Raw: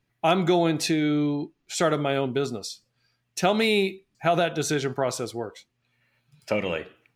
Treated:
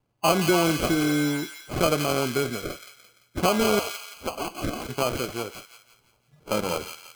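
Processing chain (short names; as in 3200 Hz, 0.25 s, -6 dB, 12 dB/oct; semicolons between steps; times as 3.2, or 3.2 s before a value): nonlinear frequency compression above 2800 Hz 4:1; 3.79–4.89 HPF 1300 Hz 24 dB/oct; sample-and-hold 24×; thin delay 0.171 s, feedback 42%, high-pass 1900 Hz, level -4 dB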